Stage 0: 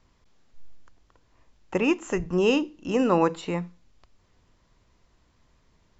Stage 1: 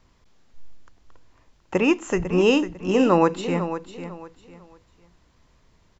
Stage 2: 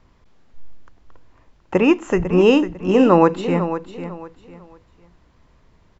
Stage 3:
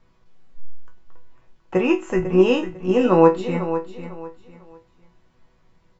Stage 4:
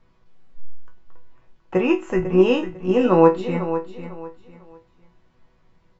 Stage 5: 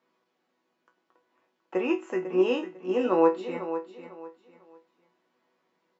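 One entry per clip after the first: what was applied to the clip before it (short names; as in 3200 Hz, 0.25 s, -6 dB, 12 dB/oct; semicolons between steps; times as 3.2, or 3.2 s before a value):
feedback echo 0.499 s, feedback 27%, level -11 dB; gain +3.5 dB
high shelf 3900 Hz -11.5 dB; gain +5 dB
resonator bank B2 sus4, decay 0.21 s; gain +8 dB
air absorption 56 m
HPF 250 Hz 24 dB/oct; gain -7 dB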